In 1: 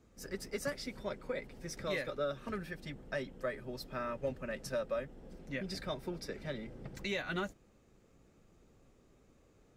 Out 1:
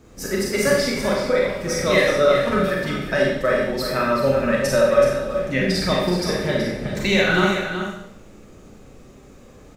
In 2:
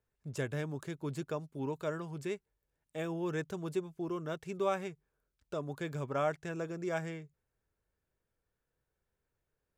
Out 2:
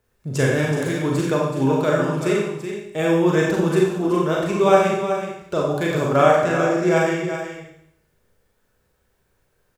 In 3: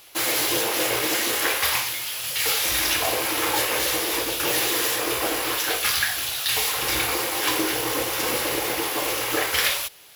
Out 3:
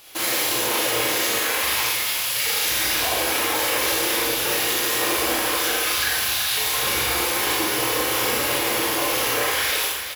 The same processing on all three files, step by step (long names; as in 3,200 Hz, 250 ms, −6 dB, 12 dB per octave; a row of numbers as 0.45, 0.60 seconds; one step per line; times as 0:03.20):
brickwall limiter −17.5 dBFS
single-tap delay 376 ms −9 dB
four-comb reverb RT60 0.73 s, combs from 30 ms, DRR −2.5 dB
loudness normalisation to −20 LKFS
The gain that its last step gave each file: +15.0, +14.0, +0.5 decibels